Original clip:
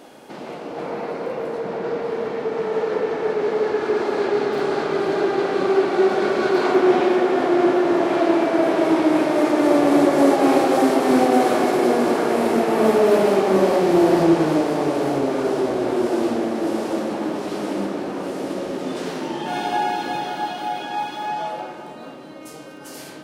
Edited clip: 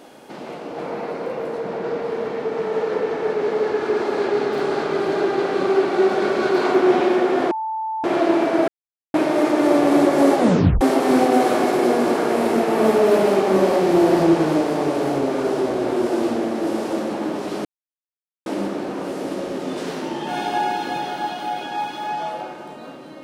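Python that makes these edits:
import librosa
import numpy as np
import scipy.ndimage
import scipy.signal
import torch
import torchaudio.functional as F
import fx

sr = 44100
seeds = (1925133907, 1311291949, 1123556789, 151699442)

y = fx.edit(x, sr, fx.bleep(start_s=7.51, length_s=0.53, hz=881.0, db=-22.5),
    fx.silence(start_s=8.68, length_s=0.46),
    fx.tape_stop(start_s=10.38, length_s=0.43),
    fx.insert_silence(at_s=17.65, length_s=0.81), tone=tone)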